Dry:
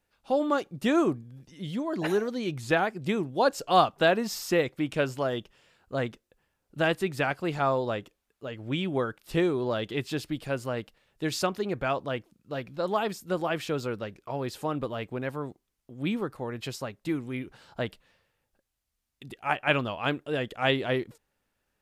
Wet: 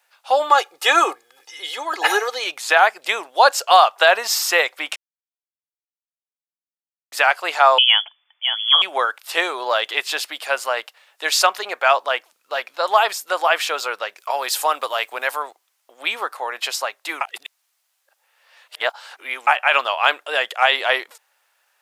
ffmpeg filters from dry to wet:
ffmpeg -i in.wav -filter_complex "[0:a]asettb=1/sr,asplit=3[link_01][link_02][link_03];[link_01]atrim=end=0.504[link_04];[link_02]atrim=start=0.5:end=2.44,asetpts=PTS-STARTPTS,afade=type=in:duration=0.004:curve=qsin,afade=type=out:start_time=1.936:duration=0.004:curve=qsin,aecho=1:1:2.4:0.83,atrim=end_sample=85554[link_05];[link_03]atrim=start=2.436[link_06];[link_04][link_05]acrossfade=duration=0.004:curve1=hsin:curve2=qsin[link_07];[link_07][link_06]acrossfade=duration=0.004:curve1=qsin:curve2=hsin,asettb=1/sr,asplit=3[link_08][link_09][link_10];[link_08]atrim=end=7.784[link_11];[link_09]atrim=start=7.78:end=8.82,asetpts=PTS-STARTPTS,afade=type=in:duration=0.004:curve=qsin,afade=type=out:start_time=1.036:duration=0.004:curve=qsin,lowpass=frequency=3000:width_type=q:width=0.5098,lowpass=frequency=3000:width_type=q:width=0.6013,lowpass=frequency=3000:width_type=q:width=0.9,lowpass=frequency=3000:width_type=q:width=2.563,afreqshift=-3500[link_12];[link_10]atrim=start=8.816[link_13];[link_11][link_12]acrossfade=duration=0.004:curve1=hsin:curve2=qsin[link_14];[link_14][link_13]acrossfade=duration=0.004:curve1=qsin:curve2=hsin,asettb=1/sr,asplit=3[link_15][link_16][link_17];[link_15]atrim=end=14.174[link_18];[link_16]atrim=start=14.17:end=15.43,asetpts=PTS-STARTPTS,afade=type=in:duration=0.004:curve=qsin,afade=type=out:start_time=1.256:duration=0.004:curve=qsin,highshelf=frequency=5200:gain=10.5[link_19];[link_17]atrim=start=15.426[link_20];[link_18][link_19]acrossfade=duration=0.004:curve1=hsin:curve2=qsin[link_21];[link_21][link_20]acrossfade=duration=0.004:curve1=qsin:curve2=hsin,asplit=5[link_22][link_23][link_24][link_25][link_26];[link_22]atrim=end=4.96,asetpts=PTS-STARTPTS,afade=type=out:start_time=4.956:duration=0.004:curve=hsin[link_27];[link_23]atrim=start=4.96:end=7.12,asetpts=PTS-STARTPTS,volume=0[link_28];[link_24]atrim=start=7.12:end=17.212,asetpts=PTS-STARTPTS,afade=type=in:duration=0.004:curve=hsin[link_29];[link_25]atrim=start=17.208:end=19.472,asetpts=PTS-STARTPTS,areverse[link_30];[link_26]atrim=start=19.468[link_31];[link_27][link_28][link_29]concat=n=3:v=0:a=1[link_32];[link_32][link_30]acrossfade=duration=0.004:curve1=hsin:curve2=hsin[link_33];[link_33][link_31]acrossfade=duration=0.004:curve1=hsin:curve2=hsin,highpass=frequency=700:width=0.5412,highpass=frequency=700:width=1.3066,alimiter=level_in=16.5dB:limit=-1dB:release=50:level=0:latency=1,volume=-1dB" out.wav

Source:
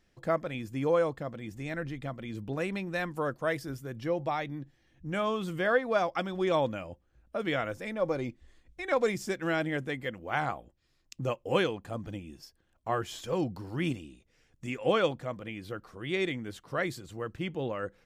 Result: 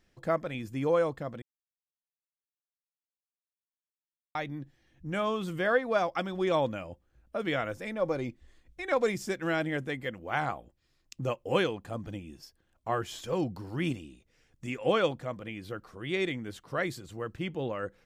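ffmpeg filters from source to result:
ffmpeg -i in.wav -filter_complex "[0:a]asplit=3[link_01][link_02][link_03];[link_01]atrim=end=1.42,asetpts=PTS-STARTPTS,afade=type=out:start_time=1.416:duration=0.004:curve=hsin[link_04];[link_02]atrim=start=1.42:end=4.35,asetpts=PTS-STARTPTS,volume=0[link_05];[link_03]atrim=start=4.35,asetpts=PTS-STARTPTS,afade=type=in:duration=0.004:curve=hsin[link_06];[link_04][link_05][link_06]concat=n=3:v=0:a=1" out.wav

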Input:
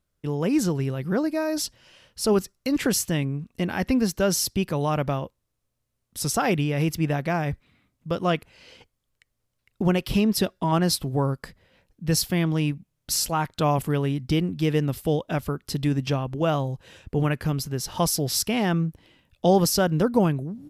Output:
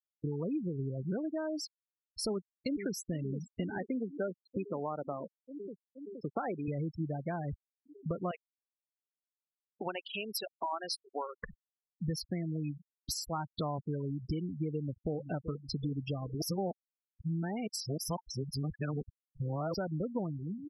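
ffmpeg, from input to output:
ffmpeg -i in.wav -filter_complex "[0:a]asplit=2[link_01][link_02];[link_02]afade=type=in:start_time=2.3:duration=0.01,afade=type=out:start_time=3.03:duration=0.01,aecho=0:1:470|940|1410|1880|2350|2820|3290|3760|4230|4700|5170|5640:0.266073|0.212858|0.170286|0.136229|0.108983|0.0871866|0.0697493|0.0557994|0.0446396|0.0357116|0.0285693|0.0228555[link_03];[link_01][link_03]amix=inputs=2:normalize=0,asettb=1/sr,asplit=3[link_04][link_05][link_06];[link_04]atrim=end=3.784[link_07];[link_05]atrim=start=3.78:end=6.68,asetpts=PTS-STARTPTS,afade=type=in:duration=0.004:curve=qsin,afade=type=out:start_time=2.896:duration=0.004:curve=qsin,highpass=260,lowpass=2200[link_08];[link_06]atrim=start=6.676[link_09];[link_07][link_08]acrossfade=duration=0.004:curve1=hsin:curve2=qsin[link_10];[link_10][link_09]acrossfade=duration=0.004:curve1=qsin:curve2=hsin,asettb=1/sr,asplit=3[link_11][link_12][link_13];[link_11]atrim=end=8.314[link_14];[link_12]atrim=start=8.31:end=11.36,asetpts=PTS-STARTPTS,afade=type=in:duration=0.004:curve=qsin,afade=type=out:start_time=3.046:duration=0.004:curve=qsin,highpass=680[link_15];[link_13]atrim=start=11.356[link_16];[link_14][link_15]acrossfade=duration=0.004:curve1=hsin:curve2=qsin[link_17];[link_17][link_16]acrossfade=duration=0.004:curve1=qsin:curve2=hsin,asplit=2[link_18][link_19];[link_19]afade=type=in:start_time=14.72:duration=0.01,afade=type=out:start_time=15.23:duration=0.01,aecho=0:1:380|760|1140|1520|1900|2280|2660:0.199526|0.129692|0.0842998|0.0547949|0.0356167|0.0231508|0.015048[link_20];[link_18][link_20]amix=inputs=2:normalize=0,asplit=3[link_21][link_22][link_23];[link_21]atrim=end=16.422[link_24];[link_22]atrim=start=16.418:end=19.742,asetpts=PTS-STARTPTS,areverse[link_25];[link_23]atrim=start=19.738[link_26];[link_24][link_25]acrossfade=duration=0.004:curve1=hsin:curve2=hsin[link_27];[link_27][link_26]acrossfade=duration=0.004:curve1=hsin:curve2=hsin,acompressor=threshold=-35dB:ratio=5,afftfilt=real='re*gte(hypot(re,im),0.0251)':imag='im*gte(hypot(re,im),0.0251)':win_size=1024:overlap=0.75,volume=1.5dB" out.wav

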